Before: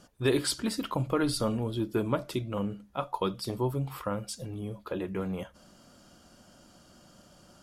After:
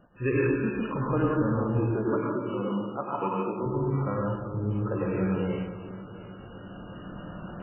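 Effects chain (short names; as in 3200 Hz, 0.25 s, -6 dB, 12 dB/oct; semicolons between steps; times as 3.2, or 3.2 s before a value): recorder AGC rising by 5.6 dB/s; 1.77–3.66 HPF 190 Hz 24 dB/oct; LFO notch square 2.7 Hz 710–2300 Hz; multi-head echo 0.354 s, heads first and second, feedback 64%, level -20.5 dB; reverb RT60 1.3 s, pre-delay 93 ms, DRR -3.5 dB; MP3 8 kbps 8000 Hz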